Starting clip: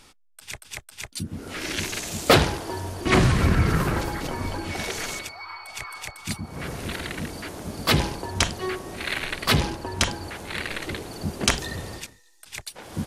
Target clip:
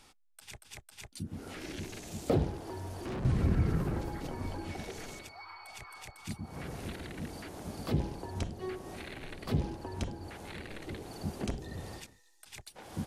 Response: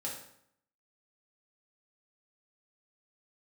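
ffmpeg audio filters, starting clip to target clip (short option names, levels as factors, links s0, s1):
-filter_complex "[0:a]equalizer=f=790:w=4.5:g=4.5,acrossover=split=540[s0][s1];[s1]acompressor=threshold=0.0126:ratio=6[s2];[s0][s2]amix=inputs=2:normalize=0,asettb=1/sr,asplit=3[s3][s4][s5];[s3]atrim=end=2.514[s6];[s4]atrim=start=2.51:end=3.25,asetpts=PTS-STARTPTS,afade=t=in:d=0.004:c=qsin,afade=t=out:st=0.736:d=0.004:c=qsin,volume=25.1,asoftclip=hard,volume=0.0398[s7];[s5]atrim=start=3.246[s8];[s6][s7]acrossfade=d=0.004:c1=hsin:c2=qsin[s9];[s9][s8]acrossfade=d=0.004:c1=qsin:c2=hsin,volume=0.422"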